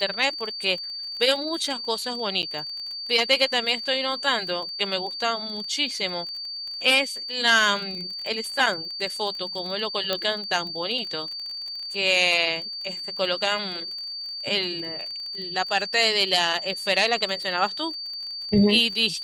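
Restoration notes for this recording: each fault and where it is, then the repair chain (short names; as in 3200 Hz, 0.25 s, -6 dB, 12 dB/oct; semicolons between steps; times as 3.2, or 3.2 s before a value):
crackle 26/s -32 dBFS
tone 4600 Hz -31 dBFS
2.42–2.43 gap 8.8 ms
10.13 pop -10 dBFS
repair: de-click; notch 4600 Hz, Q 30; interpolate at 2.42, 8.8 ms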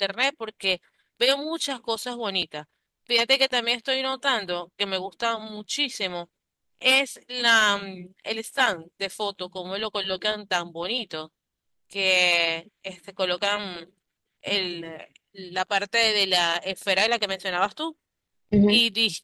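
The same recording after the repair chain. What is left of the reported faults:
none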